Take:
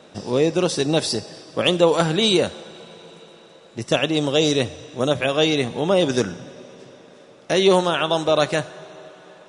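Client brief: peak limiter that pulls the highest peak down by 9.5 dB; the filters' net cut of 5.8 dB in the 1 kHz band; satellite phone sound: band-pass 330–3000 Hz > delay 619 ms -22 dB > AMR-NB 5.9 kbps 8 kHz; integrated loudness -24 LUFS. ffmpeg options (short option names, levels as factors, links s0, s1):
-af "equalizer=f=1000:t=o:g=-8,alimiter=limit=0.188:level=0:latency=1,highpass=330,lowpass=3000,aecho=1:1:619:0.0794,volume=2" -ar 8000 -c:a libopencore_amrnb -b:a 5900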